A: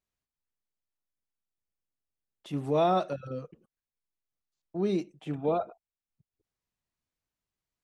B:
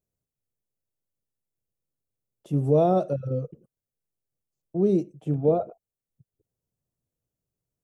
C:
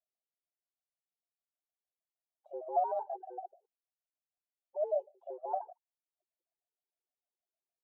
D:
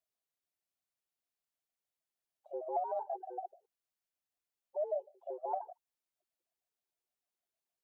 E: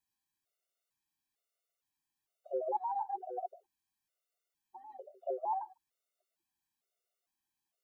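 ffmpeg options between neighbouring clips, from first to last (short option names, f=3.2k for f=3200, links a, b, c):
-af "equalizer=f=125:t=o:w=1:g=10,equalizer=f=500:t=o:w=1:g=7,equalizer=f=1k:t=o:w=1:g=-7,equalizer=f=2k:t=o:w=1:g=-12,equalizer=f=4k:t=o:w=1:g=-10,volume=2.5dB"
-af "bandpass=f=440:t=q:w=3.3:csg=0,afreqshift=240,afftfilt=real='re*gt(sin(2*PI*6.5*pts/sr)*(1-2*mod(floor(b*sr/1024/270),2)),0)':imag='im*gt(sin(2*PI*6.5*pts/sr)*(1-2*mod(floor(b*sr/1024/270),2)),0)':win_size=1024:overlap=0.75,volume=-2.5dB"
-af "acompressor=threshold=-33dB:ratio=6,volume=1.5dB"
-af "afftfilt=real='re*gt(sin(2*PI*1.1*pts/sr)*(1-2*mod(floor(b*sr/1024/380),2)),0)':imag='im*gt(sin(2*PI*1.1*pts/sr)*(1-2*mod(floor(b*sr/1024/380),2)),0)':win_size=1024:overlap=0.75,volume=6dB"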